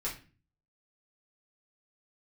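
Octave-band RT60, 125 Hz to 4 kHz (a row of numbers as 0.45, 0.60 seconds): 0.70, 0.55, 0.40, 0.35, 0.35, 0.30 seconds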